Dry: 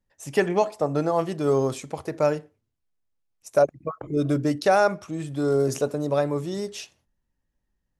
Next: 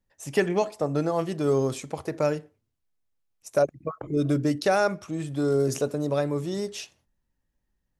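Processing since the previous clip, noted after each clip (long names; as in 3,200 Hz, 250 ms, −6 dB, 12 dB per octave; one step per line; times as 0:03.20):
dynamic equaliser 850 Hz, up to −5 dB, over −31 dBFS, Q 0.92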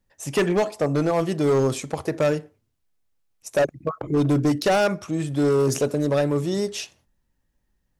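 hard clipping −21 dBFS, distortion −12 dB
level +5.5 dB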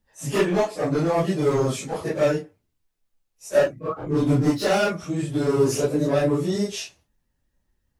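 random phases in long frames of 100 ms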